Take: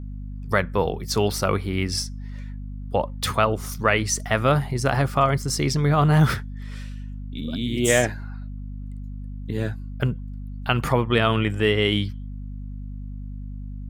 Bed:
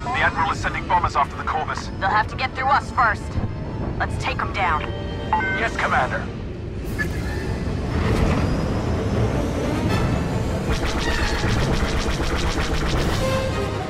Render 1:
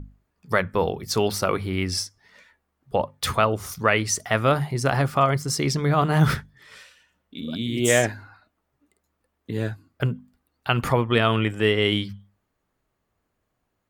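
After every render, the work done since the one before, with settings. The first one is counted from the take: hum notches 50/100/150/200/250 Hz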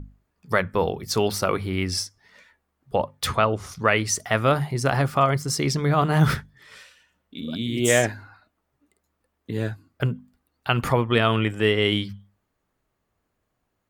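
3.27–3.85 s: distance through air 54 m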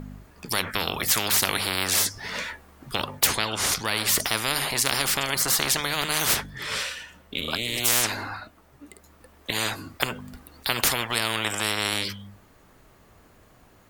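gain riding 2 s; spectrum-flattening compressor 10:1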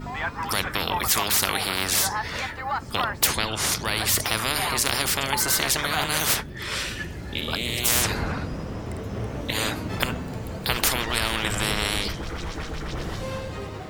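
add bed -10 dB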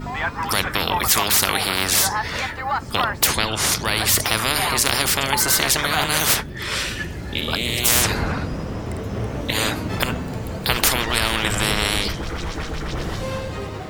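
trim +4.5 dB; peak limiter -1 dBFS, peak gain reduction 2.5 dB

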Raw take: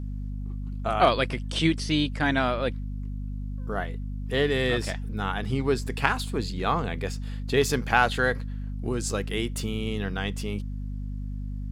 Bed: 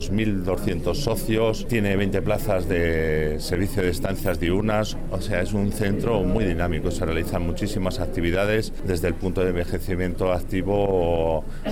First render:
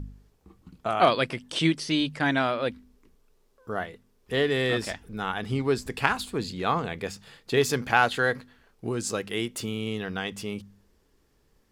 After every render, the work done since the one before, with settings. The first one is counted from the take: de-hum 50 Hz, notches 5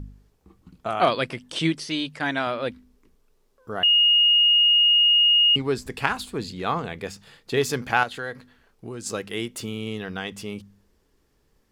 1.85–2.47 s: bass shelf 270 Hz -7 dB; 3.83–5.56 s: bleep 2.86 kHz -14 dBFS; 8.03–9.06 s: compression 1.5:1, threshold -41 dBFS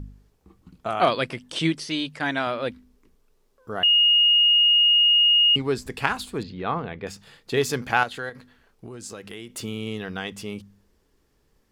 6.43–7.07 s: distance through air 270 m; 8.29–9.50 s: compression, threshold -34 dBFS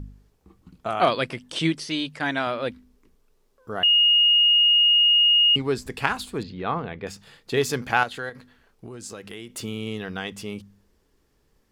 no audible change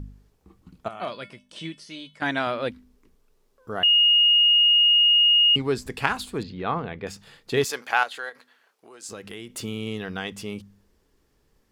0.88–2.22 s: feedback comb 200 Hz, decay 0.27 s, harmonics odd, mix 80%; 7.64–9.09 s: high-pass 590 Hz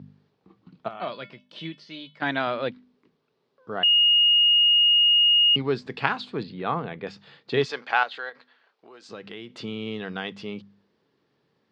Chebyshev band-pass 130–4300 Hz, order 3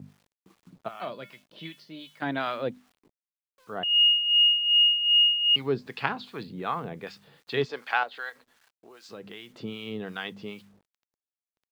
bit crusher 10-bit; harmonic tremolo 2.6 Hz, depth 70%, crossover 830 Hz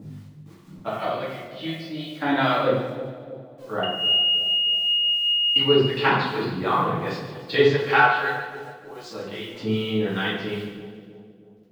two-band feedback delay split 700 Hz, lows 316 ms, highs 144 ms, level -11 dB; simulated room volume 120 m³, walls mixed, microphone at 2.3 m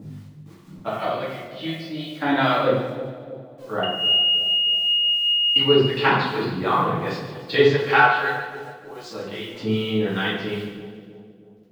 trim +1.5 dB

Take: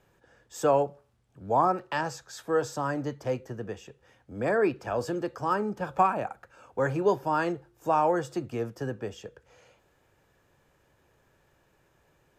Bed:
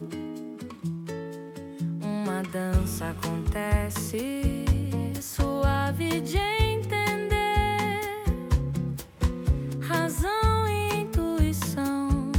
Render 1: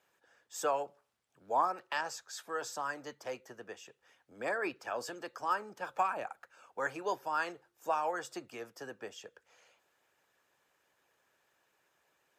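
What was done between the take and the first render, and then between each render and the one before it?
high-pass 1.1 kHz 6 dB/octave; harmonic-percussive split harmonic -7 dB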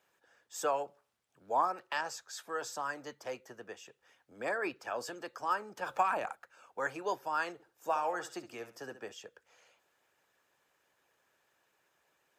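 5.77–6.35 s: transient shaper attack +2 dB, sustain +8 dB; 7.53–9.12 s: flutter echo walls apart 11.6 m, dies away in 0.33 s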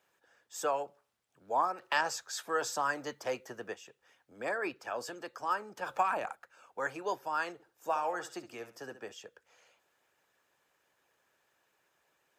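1.82–3.74 s: gain +5.5 dB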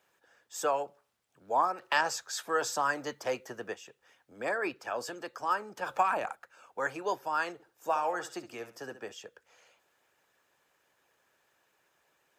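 trim +2.5 dB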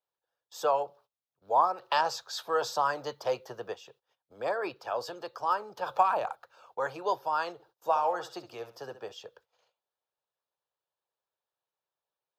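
gate -60 dBFS, range -22 dB; graphic EQ 125/250/500/1000/2000/4000/8000 Hz +4/-9/+4/+5/-10/+9/-11 dB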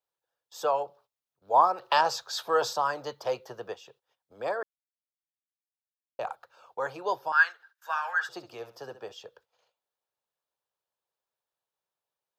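1.54–2.73 s: gain +3.5 dB; 4.63–6.19 s: mute; 7.32–8.29 s: resonant high-pass 1.6 kHz, resonance Q 10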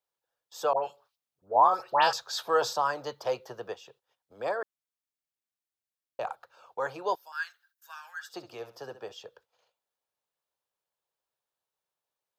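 0.73–2.13 s: phase dispersion highs, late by 114 ms, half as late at 1.6 kHz; 7.15–8.34 s: differentiator

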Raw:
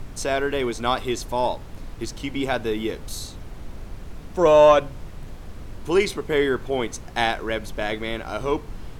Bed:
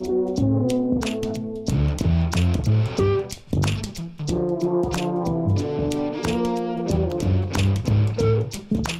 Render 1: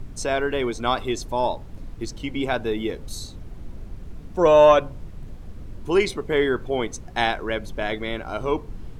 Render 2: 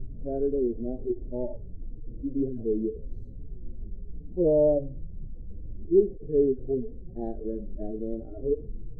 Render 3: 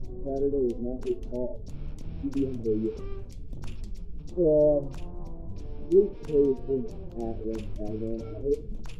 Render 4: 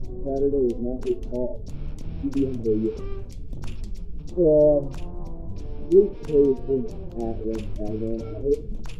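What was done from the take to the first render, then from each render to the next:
noise reduction 8 dB, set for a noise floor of -39 dBFS
harmonic-percussive separation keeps harmonic; inverse Chebyshev low-pass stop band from 1 kHz, stop band 40 dB
add bed -22.5 dB
trim +4.5 dB

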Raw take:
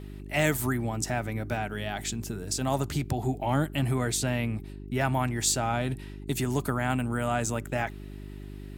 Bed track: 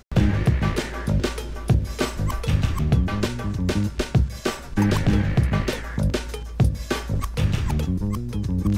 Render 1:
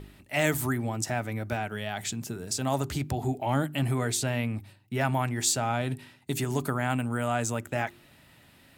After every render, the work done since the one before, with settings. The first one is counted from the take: de-hum 50 Hz, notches 8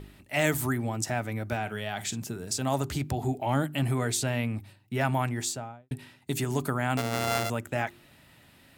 1.61–2.23 s: doubling 45 ms -14 dB; 5.25–5.91 s: studio fade out; 6.97–7.50 s: sorted samples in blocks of 64 samples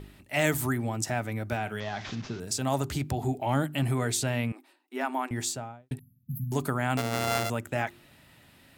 1.80–2.40 s: one-bit delta coder 32 kbps, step -40.5 dBFS; 4.52–5.31 s: rippled Chebyshev high-pass 250 Hz, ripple 6 dB; 5.99–6.52 s: brick-wall FIR band-stop 240–11000 Hz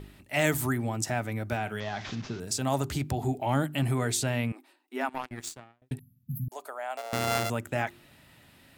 5.09–5.82 s: power-law waveshaper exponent 2; 6.48–7.13 s: ladder high-pass 540 Hz, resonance 55%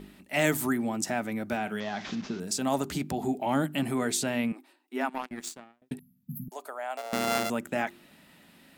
resonant low shelf 150 Hz -7 dB, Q 3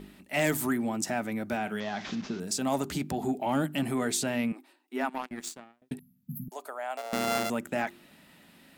saturation -16.5 dBFS, distortion -22 dB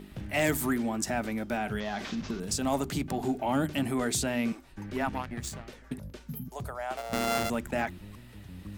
add bed track -21.5 dB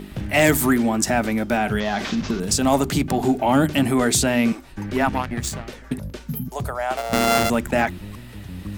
trim +10.5 dB

